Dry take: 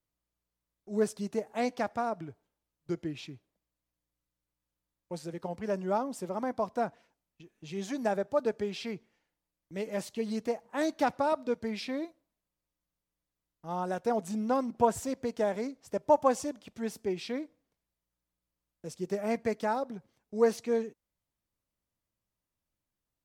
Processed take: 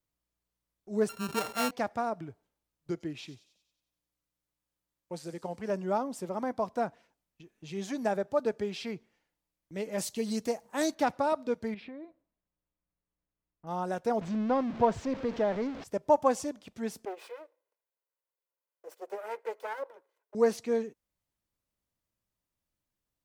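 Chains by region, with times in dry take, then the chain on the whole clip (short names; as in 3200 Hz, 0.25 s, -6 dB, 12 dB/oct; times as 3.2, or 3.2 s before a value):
1.09–1.71 sample sorter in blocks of 32 samples + sustainer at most 140 dB/s
2.91–5.7 low shelf 130 Hz -6 dB + thin delay 92 ms, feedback 55%, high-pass 5000 Hz, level -8.5 dB
9.98–10.95 tone controls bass +2 dB, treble +10 dB + short-mantissa float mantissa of 6-bit
11.74–13.67 air absorption 500 m + compressor 10:1, threshold -40 dBFS
14.21–15.84 zero-crossing step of -35.5 dBFS + air absorption 190 m
17.05–20.35 minimum comb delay 2 ms + HPF 420 Hz 24 dB/oct + bell 5400 Hz -11.5 dB 2.3 oct
whole clip: dry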